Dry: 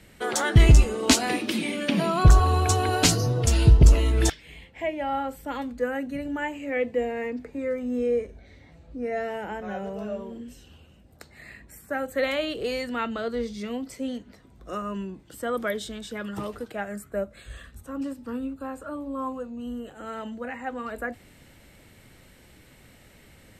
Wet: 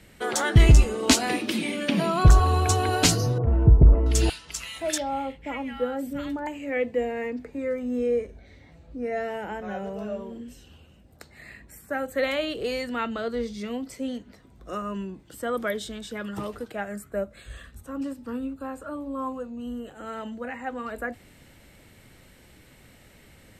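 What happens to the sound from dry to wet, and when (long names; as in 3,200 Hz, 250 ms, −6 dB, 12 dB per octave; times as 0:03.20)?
0:03.38–0:06.47: multiband delay without the direct sound lows, highs 680 ms, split 1,300 Hz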